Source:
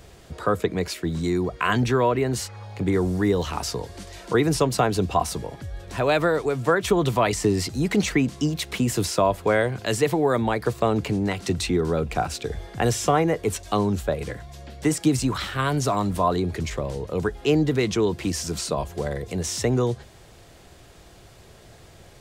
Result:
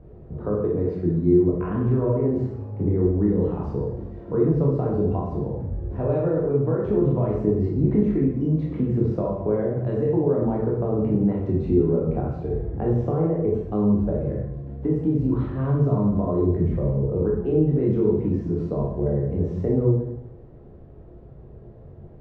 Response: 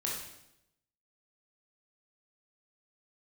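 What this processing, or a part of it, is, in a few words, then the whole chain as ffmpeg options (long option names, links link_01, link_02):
television next door: -filter_complex "[0:a]acompressor=threshold=-21dB:ratio=6,lowpass=480[link_01];[1:a]atrim=start_sample=2205[link_02];[link_01][link_02]afir=irnorm=-1:irlink=0,volume=2.5dB"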